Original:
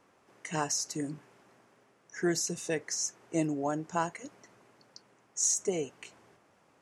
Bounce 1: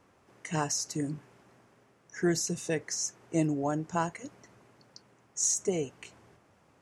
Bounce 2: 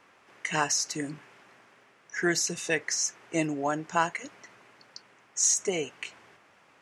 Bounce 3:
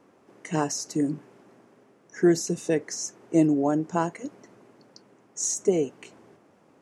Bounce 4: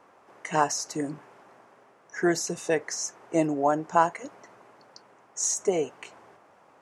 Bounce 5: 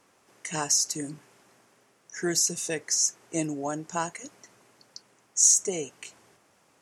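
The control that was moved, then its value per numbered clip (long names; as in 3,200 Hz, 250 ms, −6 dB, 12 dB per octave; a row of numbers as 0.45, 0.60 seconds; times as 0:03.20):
parametric band, centre frequency: 64, 2,300, 280, 850, 12,000 Hertz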